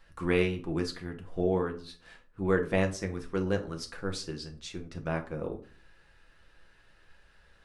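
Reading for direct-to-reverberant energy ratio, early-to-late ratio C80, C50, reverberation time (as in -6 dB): 3.0 dB, 18.5 dB, 13.0 dB, 0.45 s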